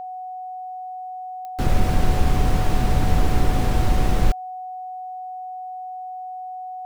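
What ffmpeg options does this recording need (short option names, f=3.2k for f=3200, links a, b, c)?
-af "adeclick=t=4,bandreject=f=740:w=30"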